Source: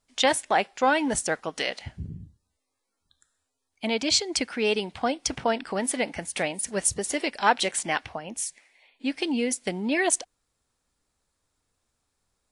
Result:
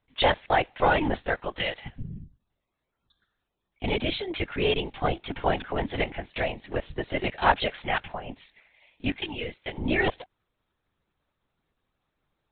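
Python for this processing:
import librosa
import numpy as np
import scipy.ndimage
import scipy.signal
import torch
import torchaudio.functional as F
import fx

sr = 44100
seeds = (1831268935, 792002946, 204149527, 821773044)

y = fx.highpass(x, sr, hz=950.0, slope=6, at=(9.18, 9.79))
y = fx.lpc_vocoder(y, sr, seeds[0], excitation='whisper', order=16)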